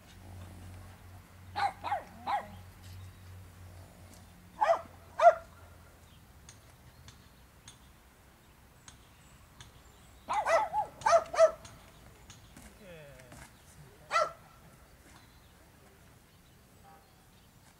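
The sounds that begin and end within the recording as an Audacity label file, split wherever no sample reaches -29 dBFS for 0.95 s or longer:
1.580000	2.380000	sound
4.610000	5.330000	sound
10.300000	11.490000	sound
14.130000	14.250000	sound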